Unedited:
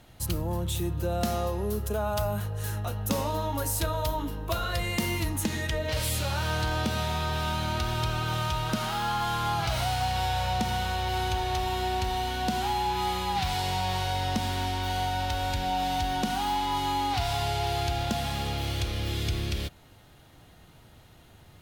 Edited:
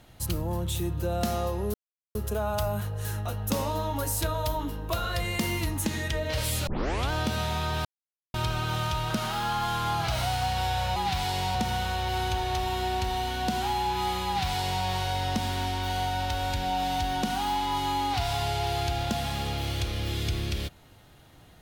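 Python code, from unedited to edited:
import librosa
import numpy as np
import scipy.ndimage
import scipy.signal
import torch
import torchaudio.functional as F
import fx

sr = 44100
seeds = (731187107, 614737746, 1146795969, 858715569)

y = fx.edit(x, sr, fx.insert_silence(at_s=1.74, length_s=0.41),
    fx.tape_start(start_s=6.26, length_s=0.44),
    fx.silence(start_s=7.44, length_s=0.49),
    fx.duplicate(start_s=13.26, length_s=0.59, to_s=10.55), tone=tone)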